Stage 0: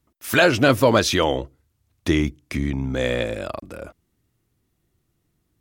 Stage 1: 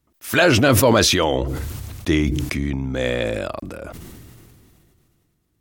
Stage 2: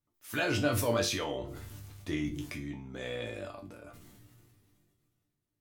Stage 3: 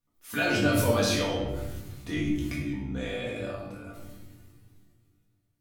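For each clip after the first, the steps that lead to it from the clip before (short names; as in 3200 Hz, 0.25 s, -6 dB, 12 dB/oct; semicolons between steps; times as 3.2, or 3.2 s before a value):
sustainer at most 23 dB/s
resonator bank G2 minor, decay 0.28 s; gain -3 dB
shoebox room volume 410 m³, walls mixed, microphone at 1.8 m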